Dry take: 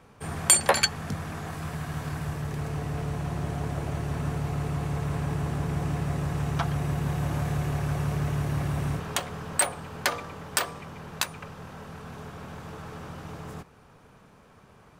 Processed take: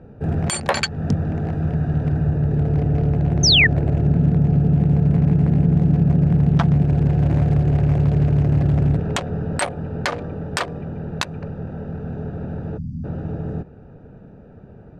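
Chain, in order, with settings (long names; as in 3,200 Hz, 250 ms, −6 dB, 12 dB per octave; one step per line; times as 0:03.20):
adaptive Wiener filter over 41 samples
0:04.04–0:06.85: parametric band 190 Hz +12 dB 0.51 octaves
0:12.78–0:13.04: time-frequency box erased 290–4,500 Hz
downward compressor 3 to 1, threshold −28 dBFS, peak gain reduction 11 dB
0:03.43–0:03.67: sound drawn into the spectrogram fall 1,700–6,500 Hz −25 dBFS
high-frequency loss of the air 78 metres
boost into a limiter +18.5 dB
level −4 dB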